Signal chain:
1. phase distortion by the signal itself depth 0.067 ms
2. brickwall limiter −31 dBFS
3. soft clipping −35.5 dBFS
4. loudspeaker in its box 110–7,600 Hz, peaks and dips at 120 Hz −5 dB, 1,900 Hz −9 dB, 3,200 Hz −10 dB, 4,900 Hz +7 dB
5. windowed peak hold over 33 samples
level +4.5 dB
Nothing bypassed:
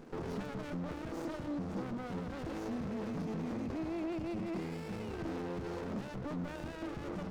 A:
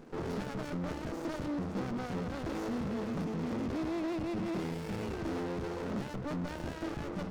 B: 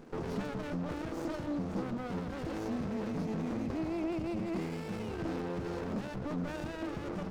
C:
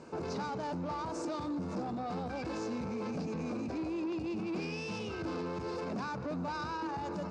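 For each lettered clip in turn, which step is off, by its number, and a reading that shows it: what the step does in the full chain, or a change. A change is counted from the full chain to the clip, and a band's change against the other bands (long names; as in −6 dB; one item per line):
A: 2, average gain reduction 8.0 dB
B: 3, distortion level −16 dB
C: 5, distortion level −2 dB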